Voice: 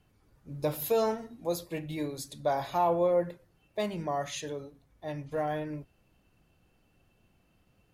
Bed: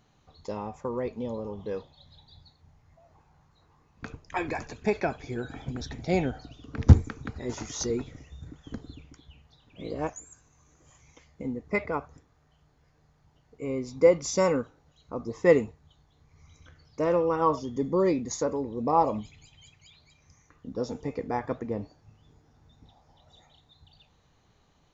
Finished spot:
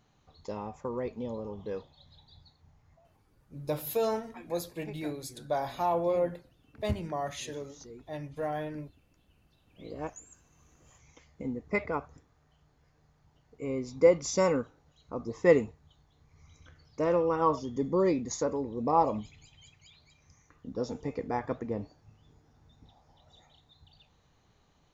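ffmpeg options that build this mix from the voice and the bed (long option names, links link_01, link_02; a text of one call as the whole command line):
ffmpeg -i stem1.wav -i stem2.wav -filter_complex "[0:a]adelay=3050,volume=-2dB[link_01];[1:a]volume=14dB,afade=type=out:start_time=2.93:duration=0.34:silence=0.158489,afade=type=in:start_time=9.25:duration=1.42:silence=0.141254[link_02];[link_01][link_02]amix=inputs=2:normalize=0" out.wav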